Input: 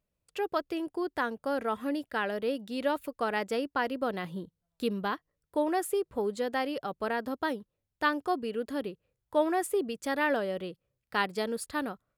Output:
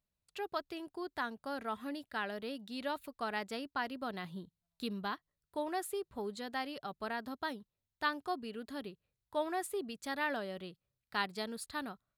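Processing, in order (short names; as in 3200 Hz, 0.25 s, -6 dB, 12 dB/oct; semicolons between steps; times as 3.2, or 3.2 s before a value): thirty-one-band EQ 315 Hz -5 dB, 500 Hz -10 dB, 4000 Hz +7 dB; gain -6 dB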